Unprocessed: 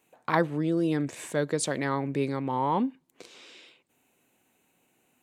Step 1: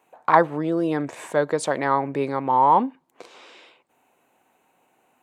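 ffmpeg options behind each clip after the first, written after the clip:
-af "equalizer=f=880:w=0.62:g=14.5,volume=0.75"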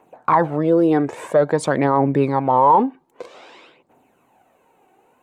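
-af "aphaser=in_gain=1:out_gain=1:delay=2.7:decay=0.47:speed=0.51:type=triangular,tiltshelf=f=1200:g=5,alimiter=limit=0.355:level=0:latency=1:release=29,volume=1.5"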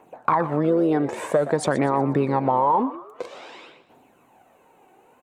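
-filter_complex "[0:a]acompressor=threshold=0.112:ratio=5,asplit=5[s0][s1][s2][s3][s4];[s1]adelay=121,afreqshift=80,volume=0.178[s5];[s2]adelay=242,afreqshift=160,volume=0.0733[s6];[s3]adelay=363,afreqshift=240,volume=0.0299[s7];[s4]adelay=484,afreqshift=320,volume=0.0123[s8];[s0][s5][s6][s7][s8]amix=inputs=5:normalize=0,volume=1.26"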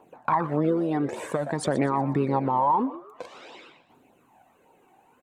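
-af "flanger=delay=0.2:depth=1.1:regen=-28:speed=1.7:shape=triangular"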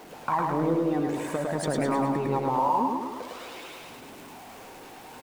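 -af "aeval=exprs='val(0)+0.5*0.0119*sgn(val(0))':c=same,aecho=1:1:105|210|315|420|525|630|735|840:0.708|0.389|0.214|0.118|0.0648|0.0356|0.0196|0.0108,volume=0.631"

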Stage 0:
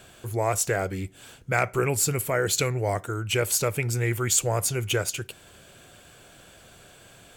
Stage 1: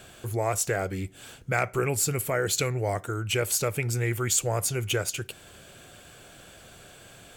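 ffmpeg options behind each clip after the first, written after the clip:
-filter_complex "[0:a]bandreject=f=980:w=24,asplit=2[s0][s1];[s1]acompressor=threshold=0.0251:ratio=6,volume=0.891[s2];[s0][s2]amix=inputs=2:normalize=0,volume=0.631"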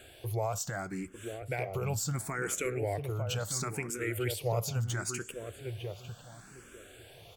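-filter_complex "[0:a]alimiter=limit=0.112:level=0:latency=1:release=47,asplit=2[s0][s1];[s1]adelay=901,lowpass=f=1100:p=1,volume=0.531,asplit=2[s2][s3];[s3]adelay=901,lowpass=f=1100:p=1,volume=0.26,asplit=2[s4][s5];[s5]adelay=901,lowpass=f=1100:p=1,volume=0.26[s6];[s0][s2][s4][s6]amix=inputs=4:normalize=0,asplit=2[s7][s8];[s8]afreqshift=0.72[s9];[s7][s9]amix=inputs=2:normalize=1,volume=0.794"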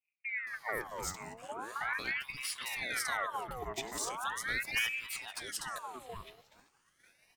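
-filter_complex "[0:a]acrossover=split=340|1400[s0][s1][s2];[s1]adelay=290[s3];[s2]adelay=470[s4];[s0][s3][s4]amix=inputs=3:normalize=0,agate=range=0.0224:threshold=0.00631:ratio=3:detection=peak,aeval=exprs='val(0)*sin(2*PI*1500*n/s+1500*0.65/0.4*sin(2*PI*0.4*n/s))':c=same"

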